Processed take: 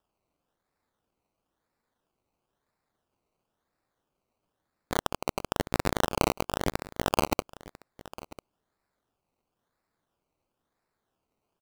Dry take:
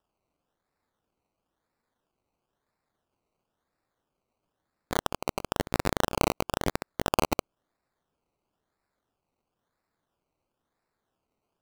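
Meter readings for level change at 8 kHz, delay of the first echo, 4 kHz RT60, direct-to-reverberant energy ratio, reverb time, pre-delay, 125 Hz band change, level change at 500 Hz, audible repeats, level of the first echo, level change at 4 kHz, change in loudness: 0.0 dB, 996 ms, no reverb audible, no reverb audible, no reverb audible, no reverb audible, 0.0 dB, 0.0 dB, 1, −18.5 dB, 0.0 dB, 0.0 dB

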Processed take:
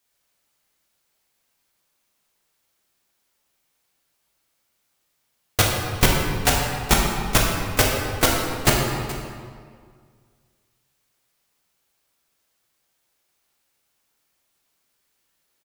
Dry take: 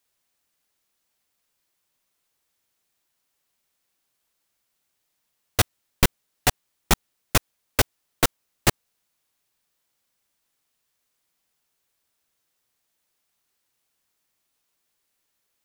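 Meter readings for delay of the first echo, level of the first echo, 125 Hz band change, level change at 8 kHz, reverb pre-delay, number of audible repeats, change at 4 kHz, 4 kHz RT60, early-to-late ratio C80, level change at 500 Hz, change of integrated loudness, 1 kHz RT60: 424 ms, −16.0 dB, +5.5 dB, +4.0 dB, 11 ms, 1, +4.5 dB, 1.5 s, 2.5 dB, +6.0 dB, +4.0 dB, 1.9 s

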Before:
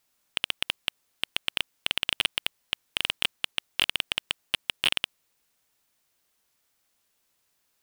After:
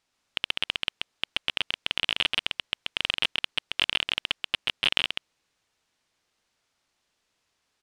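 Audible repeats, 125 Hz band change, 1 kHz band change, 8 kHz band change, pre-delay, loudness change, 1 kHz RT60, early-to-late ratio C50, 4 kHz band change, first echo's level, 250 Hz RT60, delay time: 1, +1.5 dB, +2.0 dB, −7.5 dB, no reverb audible, +1.5 dB, no reverb audible, no reverb audible, +1.5 dB, −3.0 dB, no reverb audible, 133 ms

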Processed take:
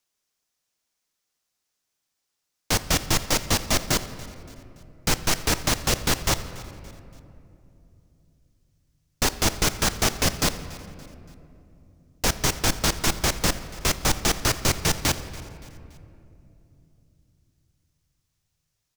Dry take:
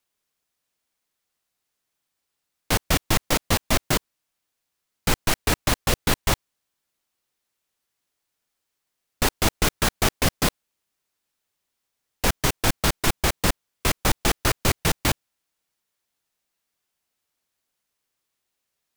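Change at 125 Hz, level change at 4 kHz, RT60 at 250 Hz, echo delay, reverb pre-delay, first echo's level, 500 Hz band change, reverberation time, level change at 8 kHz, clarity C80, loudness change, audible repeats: −1.5 dB, +1.0 dB, 4.1 s, 285 ms, 6 ms, −20.0 dB, −1.5 dB, 2.9 s, +2.5 dB, 13.0 dB, 0.0 dB, 3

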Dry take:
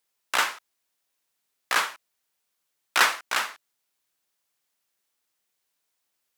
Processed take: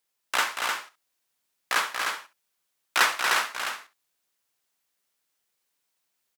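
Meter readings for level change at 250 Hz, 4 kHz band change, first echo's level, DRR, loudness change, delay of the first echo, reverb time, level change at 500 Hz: +0.5 dB, +0.5 dB, −19.5 dB, no reverb audible, −1.0 dB, 84 ms, no reverb audible, +0.5 dB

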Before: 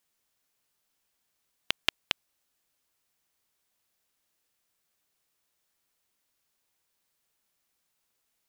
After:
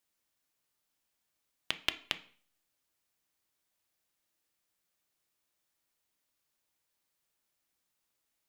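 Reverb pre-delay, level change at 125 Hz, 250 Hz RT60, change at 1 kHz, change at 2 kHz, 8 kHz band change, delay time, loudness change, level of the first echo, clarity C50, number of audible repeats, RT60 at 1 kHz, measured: 3 ms, −3.5 dB, 0.50 s, −4.5 dB, −4.0 dB, −4.5 dB, no echo audible, −4.0 dB, no echo audible, 16.0 dB, no echo audible, 0.45 s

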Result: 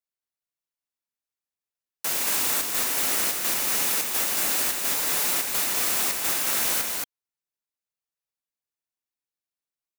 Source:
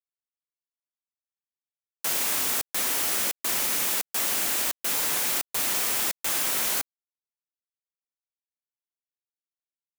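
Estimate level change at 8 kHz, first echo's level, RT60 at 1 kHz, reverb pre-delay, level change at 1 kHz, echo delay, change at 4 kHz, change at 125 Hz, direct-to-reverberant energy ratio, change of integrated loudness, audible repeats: +2.0 dB, −3.0 dB, no reverb audible, no reverb audible, +2.0 dB, 226 ms, +1.5 dB, +2.0 dB, no reverb audible, +1.5 dB, 1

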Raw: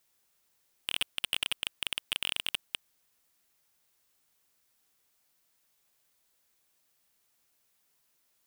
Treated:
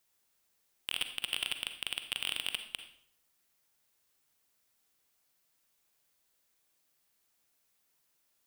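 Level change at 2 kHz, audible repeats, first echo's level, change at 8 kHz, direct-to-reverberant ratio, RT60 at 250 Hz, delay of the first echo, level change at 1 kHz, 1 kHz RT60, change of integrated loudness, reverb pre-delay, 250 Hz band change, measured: −2.5 dB, no echo audible, no echo audible, −2.5 dB, 7.5 dB, 0.70 s, no echo audible, −2.5 dB, 0.60 s, −2.5 dB, 38 ms, −2.0 dB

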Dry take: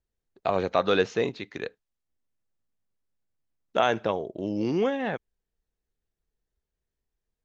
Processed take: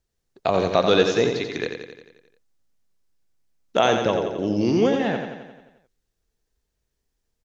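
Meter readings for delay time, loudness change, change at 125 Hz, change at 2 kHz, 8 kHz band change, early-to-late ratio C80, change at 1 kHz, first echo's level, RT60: 88 ms, +5.5 dB, +7.0 dB, +4.0 dB, can't be measured, no reverb audible, +4.0 dB, −6.5 dB, no reverb audible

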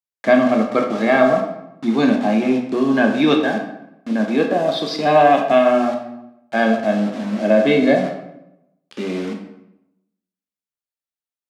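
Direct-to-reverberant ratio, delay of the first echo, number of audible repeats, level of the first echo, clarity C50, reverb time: 2.0 dB, no echo audible, no echo audible, no echo audible, 6.5 dB, 0.85 s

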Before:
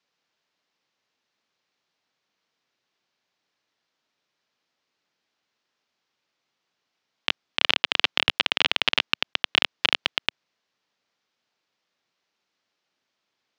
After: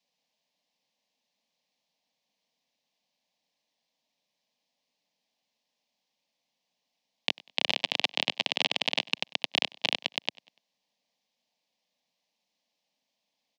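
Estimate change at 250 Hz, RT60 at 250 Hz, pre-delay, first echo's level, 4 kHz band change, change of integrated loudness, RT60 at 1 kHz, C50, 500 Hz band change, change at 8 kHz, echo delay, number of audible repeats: −2.5 dB, no reverb audible, no reverb audible, −23.0 dB, −5.5 dB, −5.5 dB, no reverb audible, no reverb audible, −2.0 dB, −0.5 dB, 97 ms, 2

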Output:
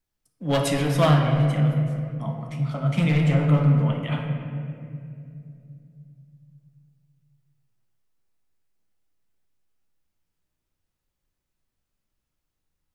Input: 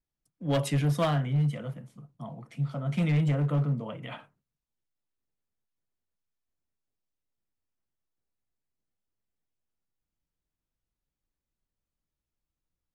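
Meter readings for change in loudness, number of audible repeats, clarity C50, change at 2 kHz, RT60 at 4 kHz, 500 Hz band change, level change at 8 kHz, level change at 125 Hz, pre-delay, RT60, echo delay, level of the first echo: +6.0 dB, no echo audible, 3.5 dB, +8.5 dB, 1.5 s, +7.5 dB, can't be measured, +7.0 dB, 5 ms, 2.5 s, no echo audible, no echo audible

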